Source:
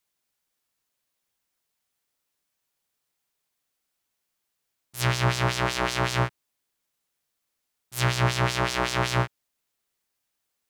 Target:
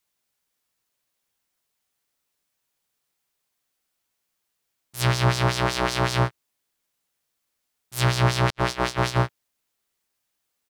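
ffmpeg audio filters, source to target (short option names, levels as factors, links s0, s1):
-filter_complex "[0:a]asplit=2[s0][s1];[s1]adelay=16,volume=0.266[s2];[s0][s2]amix=inputs=2:normalize=0,asettb=1/sr,asplit=3[s3][s4][s5];[s3]atrim=end=8.504[s6];[s4]atrim=start=8.5:end=9.22,asetpts=PTS-STARTPTS,afade=t=in:d=0.004:c=qsin,afade=t=out:st=0.716:d=0.004:c=qsin,agate=range=0.00126:threshold=0.0562:ratio=16:detection=peak[s7];[s5]atrim=start=9.216[s8];[s6][s7]acrossfade=d=0.004:c1=hsin:c2=qsin[s9];[s9][s8]acrossfade=d=0.004:c1=qsin:c2=hsin,volume=1.19"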